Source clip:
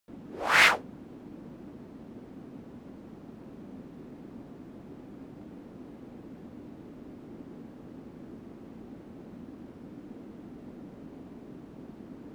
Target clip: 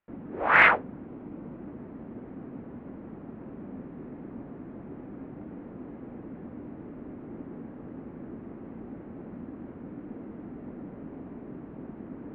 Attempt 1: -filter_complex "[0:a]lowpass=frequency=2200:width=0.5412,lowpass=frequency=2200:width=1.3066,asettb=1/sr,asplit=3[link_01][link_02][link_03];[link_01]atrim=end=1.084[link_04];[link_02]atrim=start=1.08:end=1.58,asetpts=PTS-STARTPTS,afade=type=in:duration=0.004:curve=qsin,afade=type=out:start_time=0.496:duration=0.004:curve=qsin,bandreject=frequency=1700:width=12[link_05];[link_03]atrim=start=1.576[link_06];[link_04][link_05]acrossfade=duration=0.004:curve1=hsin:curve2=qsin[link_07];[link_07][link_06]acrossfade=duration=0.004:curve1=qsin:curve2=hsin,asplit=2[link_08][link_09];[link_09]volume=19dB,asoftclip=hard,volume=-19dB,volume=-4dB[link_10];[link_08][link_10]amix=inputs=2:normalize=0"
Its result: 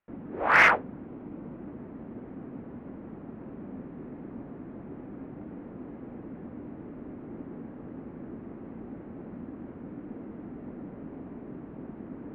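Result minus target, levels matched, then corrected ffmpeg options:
gain into a clipping stage and back: distortion +23 dB
-filter_complex "[0:a]lowpass=frequency=2200:width=0.5412,lowpass=frequency=2200:width=1.3066,asettb=1/sr,asplit=3[link_01][link_02][link_03];[link_01]atrim=end=1.084[link_04];[link_02]atrim=start=1.08:end=1.58,asetpts=PTS-STARTPTS,afade=type=in:duration=0.004:curve=qsin,afade=type=out:start_time=0.496:duration=0.004:curve=qsin,bandreject=frequency=1700:width=12[link_05];[link_03]atrim=start=1.576[link_06];[link_04][link_05]acrossfade=duration=0.004:curve1=hsin:curve2=qsin[link_07];[link_07][link_06]acrossfade=duration=0.004:curve1=qsin:curve2=hsin,asplit=2[link_08][link_09];[link_09]volume=11.5dB,asoftclip=hard,volume=-11.5dB,volume=-4dB[link_10];[link_08][link_10]amix=inputs=2:normalize=0"

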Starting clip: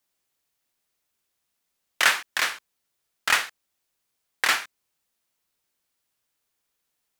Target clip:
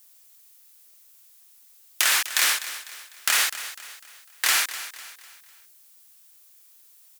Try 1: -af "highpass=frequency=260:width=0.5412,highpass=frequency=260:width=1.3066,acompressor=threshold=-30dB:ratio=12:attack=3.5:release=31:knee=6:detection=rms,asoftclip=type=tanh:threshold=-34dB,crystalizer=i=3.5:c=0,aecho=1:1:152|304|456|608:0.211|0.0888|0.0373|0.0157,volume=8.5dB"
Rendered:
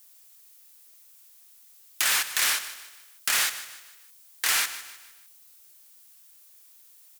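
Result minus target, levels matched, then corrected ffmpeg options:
echo 98 ms early; soft clipping: distortion +8 dB
-af "highpass=frequency=260:width=0.5412,highpass=frequency=260:width=1.3066,acompressor=threshold=-30dB:ratio=12:attack=3.5:release=31:knee=6:detection=rms,asoftclip=type=tanh:threshold=-25dB,crystalizer=i=3.5:c=0,aecho=1:1:250|500|750|1000:0.211|0.0888|0.0373|0.0157,volume=8.5dB"

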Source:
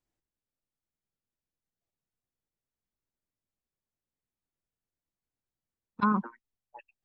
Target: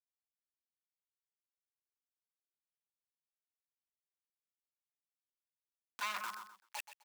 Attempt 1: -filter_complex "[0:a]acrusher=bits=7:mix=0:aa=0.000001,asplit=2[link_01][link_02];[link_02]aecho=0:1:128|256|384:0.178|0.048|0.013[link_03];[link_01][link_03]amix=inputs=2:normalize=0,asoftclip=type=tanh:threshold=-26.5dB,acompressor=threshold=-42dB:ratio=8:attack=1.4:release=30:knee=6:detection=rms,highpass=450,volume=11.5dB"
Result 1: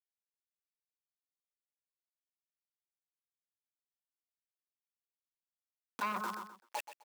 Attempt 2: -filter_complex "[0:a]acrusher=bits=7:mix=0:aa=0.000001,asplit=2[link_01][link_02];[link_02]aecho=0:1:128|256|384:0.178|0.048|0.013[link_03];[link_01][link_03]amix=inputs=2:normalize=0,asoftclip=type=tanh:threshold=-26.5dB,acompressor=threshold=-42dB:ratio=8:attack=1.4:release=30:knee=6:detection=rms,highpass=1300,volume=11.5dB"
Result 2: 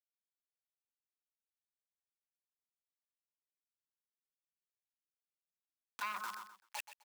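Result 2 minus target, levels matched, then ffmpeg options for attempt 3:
soft clipping: distortion −5 dB
-filter_complex "[0:a]acrusher=bits=7:mix=0:aa=0.000001,asplit=2[link_01][link_02];[link_02]aecho=0:1:128|256|384:0.178|0.048|0.013[link_03];[link_01][link_03]amix=inputs=2:normalize=0,asoftclip=type=tanh:threshold=-36dB,acompressor=threshold=-42dB:ratio=8:attack=1.4:release=30:knee=6:detection=rms,highpass=1300,volume=11.5dB"

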